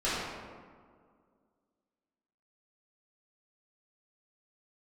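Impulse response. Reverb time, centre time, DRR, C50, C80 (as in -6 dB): 2.0 s, 117 ms, -12.0 dB, -3.0 dB, 0.0 dB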